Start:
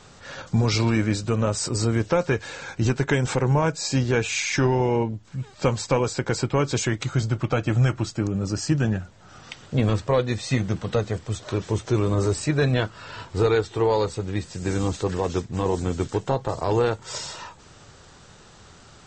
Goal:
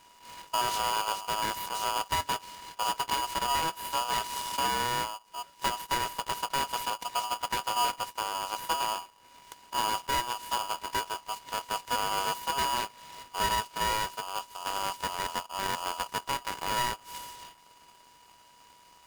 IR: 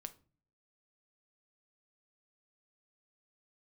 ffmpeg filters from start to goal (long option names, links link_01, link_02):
-af "aeval=exprs='abs(val(0))':channel_layout=same,aeval=exprs='val(0)*sgn(sin(2*PI*970*n/s))':channel_layout=same,volume=-8.5dB"